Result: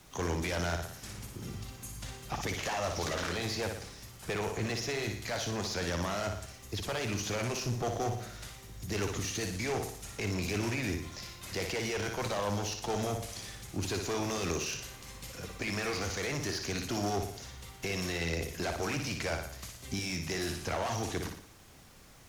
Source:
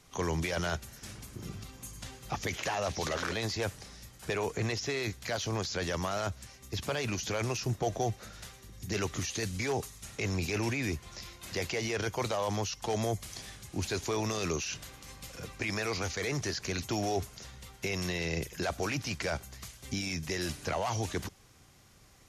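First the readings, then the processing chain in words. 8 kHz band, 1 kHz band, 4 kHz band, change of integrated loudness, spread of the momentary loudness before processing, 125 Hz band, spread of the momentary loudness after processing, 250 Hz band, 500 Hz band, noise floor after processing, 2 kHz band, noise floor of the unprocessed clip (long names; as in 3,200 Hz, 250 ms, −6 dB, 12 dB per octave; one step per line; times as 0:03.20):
0.0 dB, −0.5 dB, 0.0 dB, −1.0 dB, 12 LU, −1.0 dB, 10 LU, 0.0 dB, −1.0 dB, −52 dBFS, −0.5 dB, −57 dBFS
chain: flutter between parallel walls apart 10.1 metres, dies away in 0.55 s
background noise pink −59 dBFS
asymmetric clip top −34 dBFS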